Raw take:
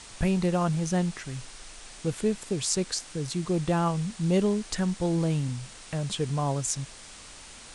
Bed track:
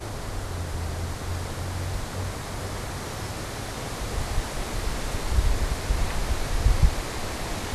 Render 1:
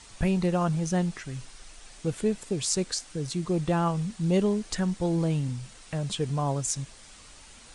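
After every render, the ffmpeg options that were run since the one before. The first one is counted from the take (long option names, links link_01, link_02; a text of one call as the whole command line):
ffmpeg -i in.wav -af "afftdn=noise_reduction=6:noise_floor=-47" out.wav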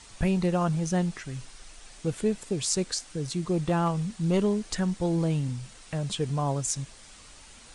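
ffmpeg -i in.wav -filter_complex "[0:a]asettb=1/sr,asplit=3[link_01][link_02][link_03];[link_01]atrim=end=3.664[link_04];[link_02]atrim=start=3.66:end=4.46,asetpts=PTS-STARTPTS,afade=type=in:duration=0.004:curve=qsin,afade=type=out:start_time=0.796:duration=0.004:curve=qsin,aeval=exprs='clip(val(0),-1,0.0891)':channel_layout=same[link_05];[link_03]atrim=start=4.456[link_06];[link_04][link_05]acrossfade=duration=0.004:curve1=hsin:curve2=qsin[link_07];[link_07][link_06]acrossfade=duration=0.004:curve1=qsin:curve2=hsin" out.wav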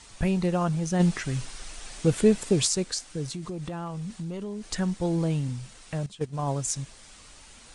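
ffmpeg -i in.wav -filter_complex "[0:a]asplit=3[link_01][link_02][link_03];[link_01]afade=type=out:start_time=0.99:duration=0.02[link_04];[link_02]acontrast=83,afade=type=in:start_time=0.99:duration=0.02,afade=type=out:start_time=2.66:duration=0.02[link_05];[link_03]afade=type=in:start_time=2.66:duration=0.02[link_06];[link_04][link_05][link_06]amix=inputs=3:normalize=0,asettb=1/sr,asplit=3[link_07][link_08][link_09];[link_07]atrim=end=3.284[link_10];[link_08]atrim=start=3.28:end=4.68,asetpts=PTS-STARTPTS,afade=type=in:duration=0.004:curve=qsin,afade=type=out:start_time=1.396:duration=0.004:curve=qsin,acompressor=threshold=-31dB:ratio=6:attack=3.2:release=140:knee=1:detection=peak[link_11];[link_09]atrim=start=4.676[link_12];[link_10][link_11]acrossfade=duration=0.004:curve1=hsin:curve2=qsin[link_13];[link_13][link_12]acrossfade=duration=0.004:curve1=qsin:curve2=hsin,asettb=1/sr,asplit=3[link_14][link_15][link_16];[link_14]atrim=end=6.064[link_17];[link_15]atrim=start=6.06:end=6.48,asetpts=PTS-STARTPTS,afade=type=in:duration=0.004:curve=qsin,afade=type=out:start_time=0.416:duration=0.004:curve=qsin,agate=range=-14dB:threshold=-28dB:ratio=16:release=100:detection=peak[link_18];[link_16]atrim=start=6.476[link_19];[link_17][link_18]acrossfade=duration=0.004:curve1=hsin:curve2=qsin[link_20];[link_20][link_19]acrossfade=duration=0.004:curve1=qsin:curve2=hsin" out.wav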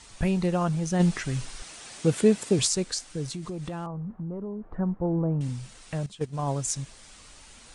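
ffmpeg -i in.wav -filter_complex "[0:a]asettb=1/sr,asplit=3[link_01][link_02][link_03];[link_01]atrim=end=1.624[link_04];[link_02]atrim=start=1.62:end=2.59,asetpts=PTS-STARTPTS,afade=type=in:duration=0.004:curve=qsin,afade=type=out:start_time=0.966:duration=0.004:curve=qsin,highpass=110[link_05];[link_03]atrim=start=2.586[link_06];[link_04][link_05]acrossfade=duration=0.004:curve1=hsin:curve2=qsin[link_07];[link_07][link_06]acrossfade=duration=0.004:curve1=qsin:curve2=hsin,asettb=1/sr,asplit=3[link_08][link_09][link_10];[link_08]atrim=end=3.864[link_11];[link_09]atrim=start=3.86:end=5.41,asetpts=PTS-STARTPTS,afade=type=in:duration=0.004:curve=qsin,afade=type=out:start_time=1.546:duration=0.004:curve=qsin,lowpass=frequency=1200:width=0.5412,lowpass=frequency=1200:width=1.3066[link_12];[link_10]atrim=start=5.406[link_13];[link_11][link_12]acrossfade=duration=0.004:curve1=hsin:curve2=qsin[link_14];[link_14][link_13]acrossfade=duration=0.004:curve1=qsin:curve2=hsin" out.wav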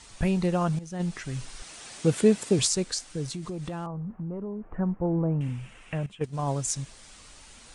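ffmpeg -i in.wav -filter_complex "[0:a]asettb=1/sr,asplit=3[link_01][link_02][link_03];[link_01]atrim=end=4.124[link_04];[link_02]atrim=start=4.12:end=6.24,asetpts=PTS-STARTPTS,afade=type=in:duration=0.004:curve=qsin,afade=type=out:start_time=2.116:duration=0.004:curve=qsin,highshelf=frequency=3400:width_type=q:width=3:gain=-8[link_05];[link_03]atrim=start=6.236[link_06];[link_04][link_05]acrossfade=duration=0.004:curve1=hsin:curve2=qsin[link_07];[link_07][link_06]acrossfade=duration=0.004:curve1=qsin:curve2=hsin,asplit=2[link_08][link_09];[link_08]atrim=end=0.79,asetpts=PTS-STARTPTS,afade=type=out:start_time=0.786:duration=0.004:curve=hsin:silence=0.211349[link_10];[link_09]atrim=start=0.79,asetpts=PTS-STARTPTS,afade=type=in:duration=1.03:silence=0.211349[link_11];[link_10][link_11]concat=n=2:v=0:a=1" out.wav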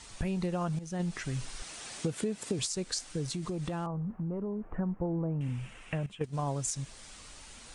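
ffmpeg -i in.wav -af "alimiter=limit=-15.5dB:level=0:latency=1:release=293,acompressor=threshold=-29dB:ratio=6" out.wav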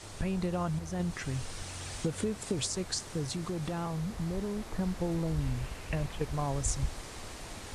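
ffmpeg -i in.wav -i bed.wav -filter_complex "[1:a]volume=-14dB[link_01];[0:a][link_01]amix=inputs=2:normalize=0" out.wav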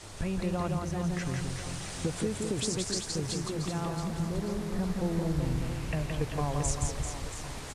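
ffmpeg -i in.wav -af "aecho=1:1:170|391|678.3|1052|1537:0.631|0.398|0.251|0.158|0.1" out.wav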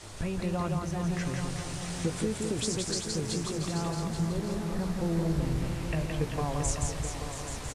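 ffmpeg -i in.wav -filter_complex "[0:a]asplit=2[link_01][link_02];[link_02]adelay=18,volume=-11dB[link_03];[link_01][link_03]amix=inputs=2:normalize=0,aecho=1:1:831:0.316" out.wav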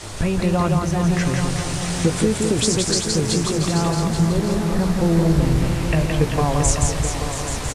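ffmpeg -i in.wav -af "volume=12dB" out.wav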